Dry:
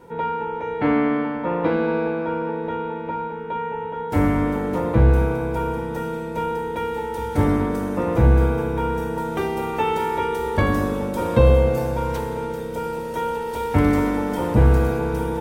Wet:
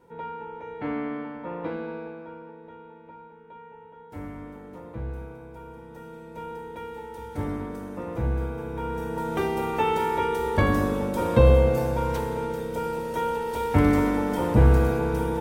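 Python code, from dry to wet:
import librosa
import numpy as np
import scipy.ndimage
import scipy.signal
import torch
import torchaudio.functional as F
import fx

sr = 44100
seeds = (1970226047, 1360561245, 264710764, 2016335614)

y = fx.gain(x, sr, db=fx.line((1.67, -11.0), (2.57, -19.0), (5.6, -19.0), (6.54, -11.5), (8.53, -11.5), (9.36, -2.0)))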